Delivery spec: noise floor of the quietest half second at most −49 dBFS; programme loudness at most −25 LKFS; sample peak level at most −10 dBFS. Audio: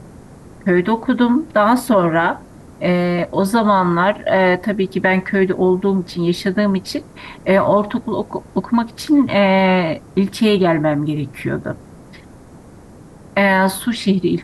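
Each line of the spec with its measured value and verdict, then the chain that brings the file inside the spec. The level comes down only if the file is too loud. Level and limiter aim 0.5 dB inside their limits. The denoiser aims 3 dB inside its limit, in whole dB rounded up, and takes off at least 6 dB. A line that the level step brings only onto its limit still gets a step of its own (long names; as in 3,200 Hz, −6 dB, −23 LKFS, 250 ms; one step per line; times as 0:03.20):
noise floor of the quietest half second −41 dBFS: out of spec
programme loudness −17.0 LKFS: out of spec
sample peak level −5.0 dBFS: out of spec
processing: level −8.5 dB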